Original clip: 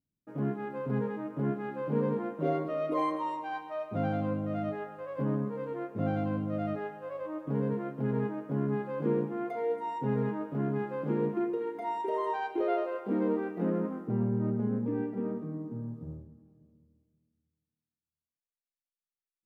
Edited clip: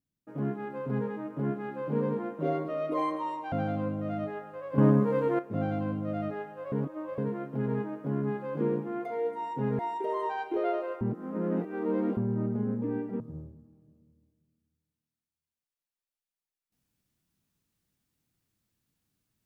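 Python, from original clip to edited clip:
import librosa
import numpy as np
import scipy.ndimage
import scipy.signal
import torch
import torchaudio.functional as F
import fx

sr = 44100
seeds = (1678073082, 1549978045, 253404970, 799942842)

y = fx.edit(x, sr, fx.cut(start_s=3.52, length_s=0.45),
    fx.clip_gain(start_s=5.23, length_s=0.61, db=9.5),
    fx.reverse_span(start_s=7.17, length_s=0.46),
    fx.cut(start_s=10.24, length_s=1.59),
    fx.reverse_span(start_s=13.05, length_s=1.16),
    fx.cut(start_s=15.24, length_s=0.69), tone=tone)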